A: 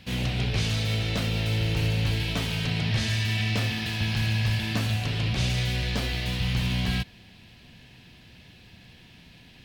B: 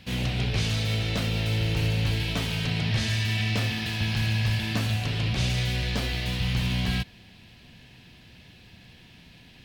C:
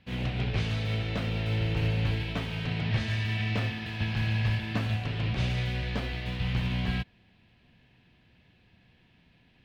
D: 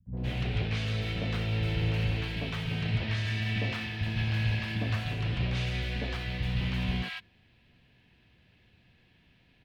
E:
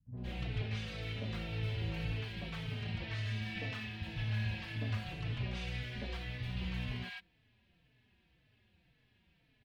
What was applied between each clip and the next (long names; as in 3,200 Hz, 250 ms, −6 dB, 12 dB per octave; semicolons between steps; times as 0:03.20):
no processing that can be heard
bass and treble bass −1 dB, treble −15 dB; expander for the loud parts 1.5 to 1, over −42 dBFS
three-band delay without the direct sound lows, mids, highs 60/170 ms, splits 200/850 Hz
barber-pole flanger 4.1 ms −1.9 Hz; level −5 dB